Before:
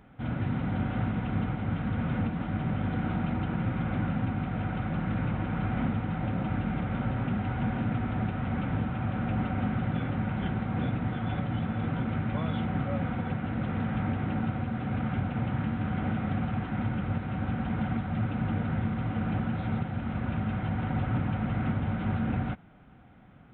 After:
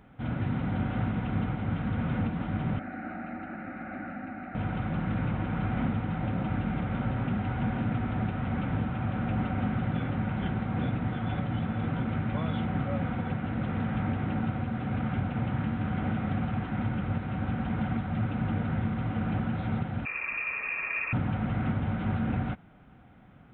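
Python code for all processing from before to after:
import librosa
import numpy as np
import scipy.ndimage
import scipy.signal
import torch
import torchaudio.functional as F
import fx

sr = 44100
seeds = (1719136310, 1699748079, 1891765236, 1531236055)

y = fx.chain(x, sr, fx.highpass(hz=360.0, slope=6),
    fx.fixed_phaser(hz=670.0, stages=8), at=(2.79, 4.55))
y = fx.chain(y, sr, fx.low_shelf(hz=100.0, db=-11.0),
    fx.freq_invert(carrier_hz=2600), at=(20.05, 21.13))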